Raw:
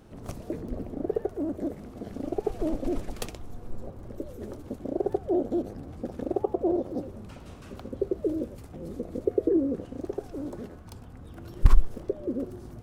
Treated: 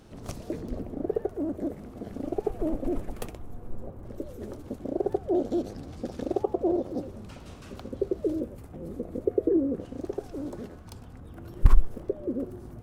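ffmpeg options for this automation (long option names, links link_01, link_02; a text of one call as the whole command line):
ffmpeg -i in.wav -af "asetnsamples=nb_out_samples=441:pad=0,asendcmd='0.8 equalizer g -2.5;2.48 equalizer g -9.5;4.05 equalizer g 0.5;5.35 equalizer g 10;6.43 equalizer g 3.5;8.4 equalizer g -6.5;9.8 equalizer g 2;11.2 equalizer g -5.5',equalizer=frequency=4900:width_type=o:width=1.8:gain=5.5" out.wav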